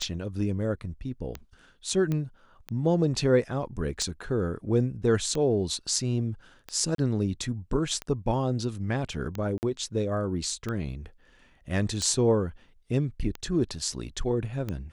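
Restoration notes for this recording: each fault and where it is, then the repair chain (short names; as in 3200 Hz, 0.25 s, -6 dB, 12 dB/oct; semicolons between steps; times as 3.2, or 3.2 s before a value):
tick 45 rpm -19 dBFS
2.12 pop -18 dBFS
6.95–6.98 gap 33 ms
9.58–9.63 gap 49 ms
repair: de-click; interpolate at 6.95, 33 ms; interpolate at 9.58, 49 ms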